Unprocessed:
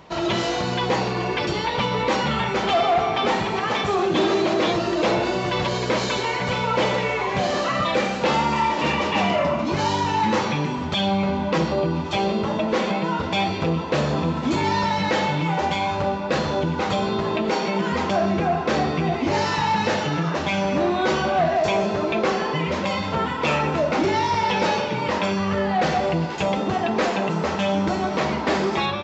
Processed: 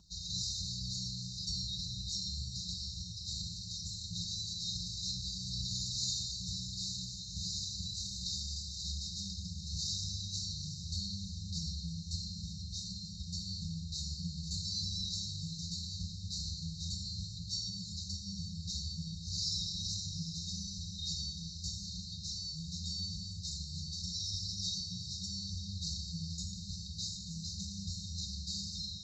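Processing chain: brick-wall FIR band-stop 170–3700 Hz; fixed phaser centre 530 Hz, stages 6; notch comb 390 Hz; diffused feedback echo 0.847 s, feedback 49%, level -10 dB; shoebox room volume 3100 m³, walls mixed, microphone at 1.2 m

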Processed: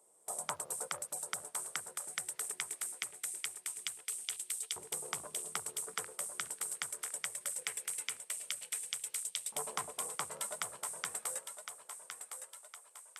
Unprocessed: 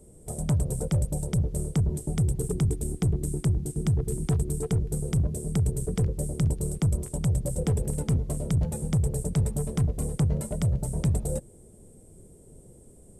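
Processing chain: LFO high-pass saw up 0.21 Hz 940–3400 Hz; gate -54 dBFS, range -7 dB; thinning echo 1.061 s, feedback 52%, high-pass 500 Hz, level -7.5 dB

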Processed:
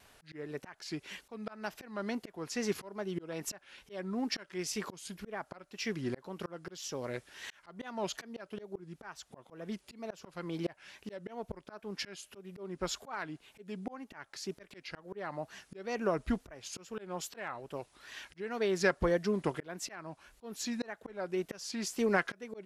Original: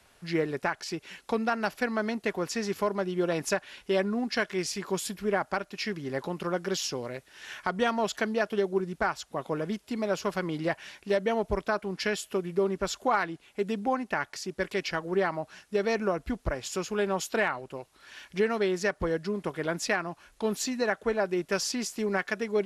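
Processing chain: auto swell 0.504 s; wow and flutter 120 cents

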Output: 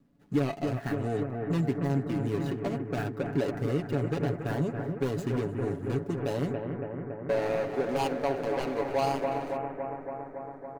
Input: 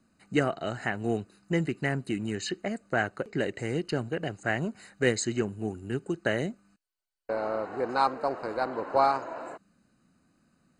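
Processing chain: median filter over 41 samples; on a send: analogue delay 0.28 s, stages 4096, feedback 77%, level -9 dB; on the sum: limiter -24.5 dBFS, peak gain reduction 10 dB; comb 7.1 ms; gain +3 dB

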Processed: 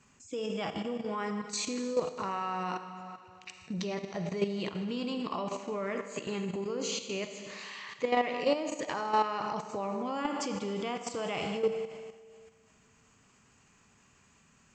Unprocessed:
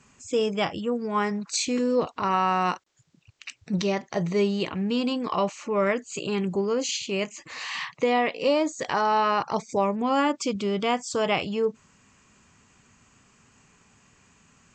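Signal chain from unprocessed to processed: Schroeder reverb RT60 2 s, DRR 6 dB; level quantiser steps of 10 dB; gain -4 dB

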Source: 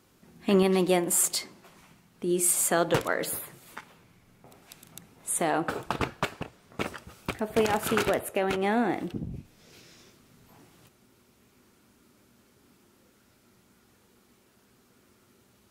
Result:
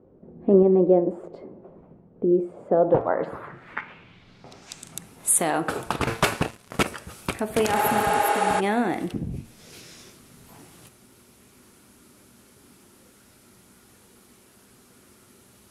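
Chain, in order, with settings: de-hum 113.7 Hz, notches 24; 6.07–6.83 sample leveller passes 3; in parallel at +2 dB: compressor, threshold -34 dBFS, peak gain reduction 15.5 dB; 7.79–8.57 on the sum: spectral repair 300–11000 Hz before; low-pass sweep 510 Hz -> 11000 Hz, 2.71–5.09

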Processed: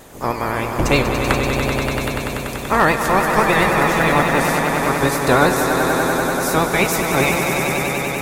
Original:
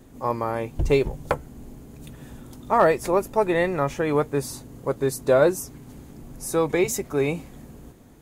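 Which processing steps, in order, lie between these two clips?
spectral limiter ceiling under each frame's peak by 18 dB; in parallel at -1.5 dB: compressor, threshold -28 dBFS, peak gain reduction 14.5 dB; on the sum: swelling echo 96 ms, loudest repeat 5, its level -8 dB; vibrato 9.7 Hz 62 cents; 3.84–4.47 modulation noise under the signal 33 dB; gain +1.5 dB

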